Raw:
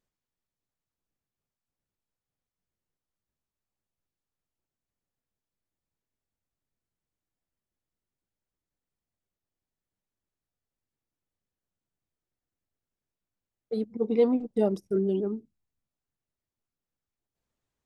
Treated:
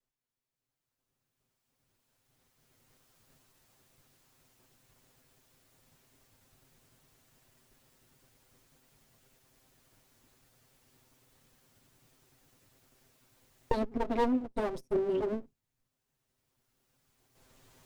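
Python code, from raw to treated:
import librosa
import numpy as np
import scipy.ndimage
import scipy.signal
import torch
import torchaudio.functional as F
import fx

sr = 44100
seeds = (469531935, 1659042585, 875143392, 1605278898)

y = fx.lower_of_two(x, sr, delay_ms=7.7)
y = fx.recorder_agc(y, sr, target_db=-18.5, rise_db_per_s=10.0, max_gain_db=30)
y = F.gain(torch.from_numpy(y), -3.5).numpy()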